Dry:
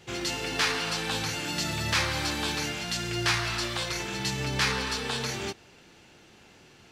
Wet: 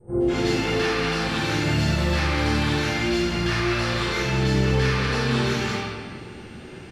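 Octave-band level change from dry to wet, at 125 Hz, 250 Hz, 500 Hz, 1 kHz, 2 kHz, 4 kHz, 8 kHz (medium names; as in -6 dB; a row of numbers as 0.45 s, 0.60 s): +11.5 dB, +12.0 dB, +11.0 dB, +5.5 dB, +4.5 dB, +1.0 dB, -3.0 dB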